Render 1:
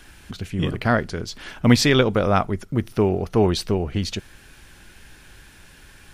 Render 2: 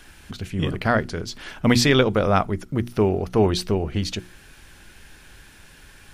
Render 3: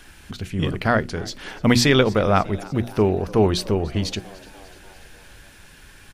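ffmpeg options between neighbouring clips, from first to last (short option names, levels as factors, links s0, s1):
-af "bandreject=f=60:t=h:w=6,bandreject=f=120:t=h:w=6,bandreject=f=180:t=h:w=6,bandreject=f=240:t=h:w=6,bandreject=f=300:t=h:w=6,bandreject=f=360:t=h:w=6"
-filter_complex "[0:a]asplit=6[s0][s1][s2][s3][s4][s5];[s1]adelay=295,afreqshift=95,volume=0.0794[s6];[s2]adelay=590,afreqshift=190,volume=0.049[s7];[s3]adelay=885,afreqshift=285,volume=0.0305[s8];[s4]adelay=1180,afreqshift=380,volume=0.0188[s9];[s5]adelay=1475,afreqshift=475,volume=0.0117[s10];[s0][s6][s7][s8][s9][s10]amix=inputs=6:normalize=0,volume=1.12"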